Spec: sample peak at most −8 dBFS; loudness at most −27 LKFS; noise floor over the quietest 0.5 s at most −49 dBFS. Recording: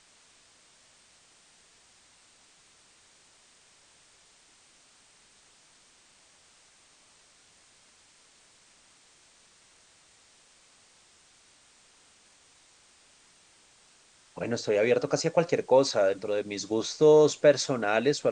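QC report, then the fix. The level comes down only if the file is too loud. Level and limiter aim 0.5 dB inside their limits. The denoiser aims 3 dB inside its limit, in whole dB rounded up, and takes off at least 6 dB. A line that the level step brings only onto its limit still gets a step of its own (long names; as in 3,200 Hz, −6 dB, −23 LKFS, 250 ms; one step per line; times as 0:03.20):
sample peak −8.5 dBFS: in spec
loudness −25.0 LKFS: out of spec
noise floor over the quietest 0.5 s −60 dBFS: in spec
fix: level −2.5 dB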